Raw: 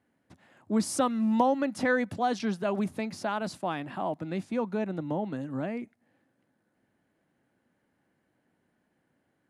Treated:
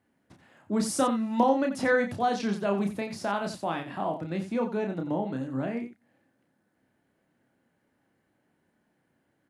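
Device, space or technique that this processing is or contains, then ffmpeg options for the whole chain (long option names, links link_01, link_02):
slapback doubling: -filter_complex "[0:a]asplit=3[link_01][link_02][link_03];[link_02]adelay=30,volume=-5dB[link_04];[link_03]adelay=88,volume=-11dB[link_05];[link_01][link_04][link_05]amix=inputs=3:normalize=0"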